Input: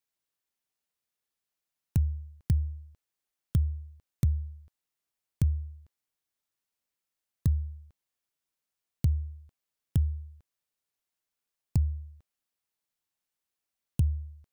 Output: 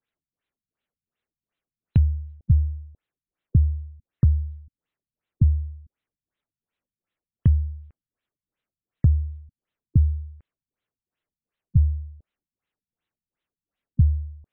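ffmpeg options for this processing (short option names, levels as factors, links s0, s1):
-af "equalizer=f=870:w=1.5:g=-4.5,afftfilt=real='re*lt(b*sr/1024,210*pow(4200/210,0.5+0.5*sin(2*PI*2.7*pts/sr)))':imag='im*lt(b*sr/1024,210*pow(4200/210,0.5+0.5*sin(2*PI*2.7*pts/sr)))':win_size=1024:overlap=0.75,volume=2.51"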